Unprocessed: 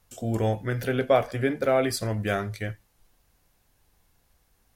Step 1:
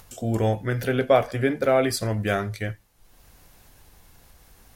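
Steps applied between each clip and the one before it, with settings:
upward compression, threshold −43 dBFS
level +2.5 dB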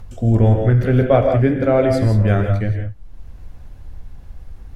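RIAA equalisation playback
reverb whose tail is shaped and stops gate 200 ms rising, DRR 4 dB
level +1 dB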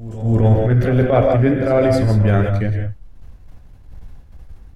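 downward expander −28 dBFS
transient designer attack −11 dB, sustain +2 dB
echo ahead of the sound 262 ms −16 dB
level +1.5 dB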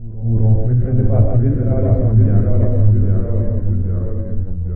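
high-frequency loss of the air 460 metres
delay with pitch and tempo change per echo 662 ms, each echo −1 semitone, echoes 3
spectral tilt −4 dB per octave
level −12 dB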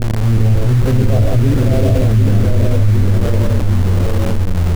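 in parallel at −3.5 dB: bit reduction 4 bits
on the sum: envelope flattener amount 70%
level −6.5 dB

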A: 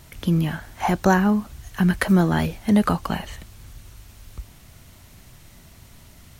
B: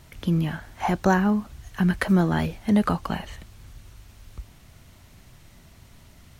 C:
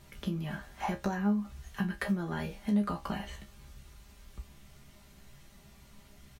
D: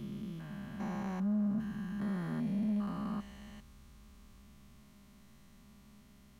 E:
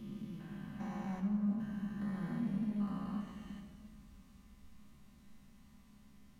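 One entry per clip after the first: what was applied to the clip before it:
high-shelf EQ 7,200 Hz −6.5 dB; level −2.5 dB
comb filter 5 ms, depth 54%; downward compressor 6 to 1, threshold −23 dBFS, peak gain reduction 11.5 dB; tuned comb filter 68 Hz, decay 0.2 s, harmonics all, mix 90%
spectrum averaged block by block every 400 ms; hollow resonant body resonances 220/1,100 Hz, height 11 dB, ringing for 45 ms; soft clipping −22 dBFS, distortion −19 dB; level −5 dB
rectangular room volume 2,800 cubic metres, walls mixed, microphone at 2 metres; level −6.5 dB

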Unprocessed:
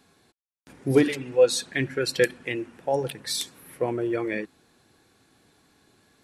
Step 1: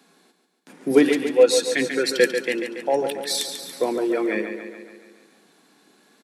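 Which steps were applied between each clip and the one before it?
Butterworth high-pass 170 Hz 48 dB per octave
on a send: repeating echo 141 ms, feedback 58%, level −8 dB
on the sum: level +3.5 dB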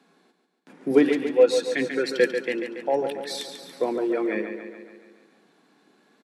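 low-pass filter 2,500 Hz 6 dB per octave
level −2 dB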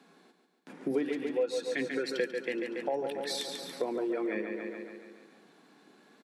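downward compressor 3 to 1, threshold −33 dBFS, peak gain reduction 16 dB
level +1 dB

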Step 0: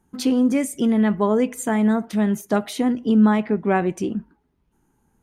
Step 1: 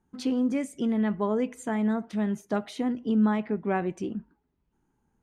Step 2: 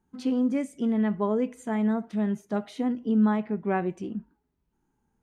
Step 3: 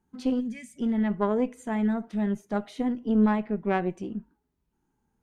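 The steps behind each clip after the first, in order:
high-frequency loss of the air 57 metres; level −7.5 dB
harmonic and percussive parts rebalanced percussive −7 dB; level +1 dB
gain on a spectral selection 0:00.40–0:00.76, 250–1,600 Hz −21 dB; harmonic generator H 2 −10 dB, 7 −38 dB, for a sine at −14 dBFS

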